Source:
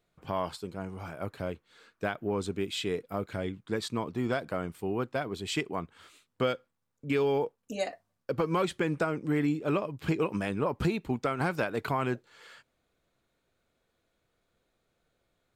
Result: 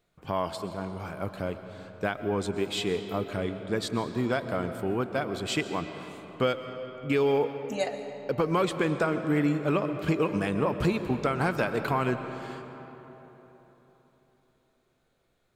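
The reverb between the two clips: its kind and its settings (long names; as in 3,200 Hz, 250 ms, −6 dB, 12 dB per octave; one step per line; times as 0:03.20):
comb and all-pass reverb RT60 3.9 s, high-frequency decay 0.55×, pre-delay 85 ms, DRR 8.5 dB
level +2.5 dB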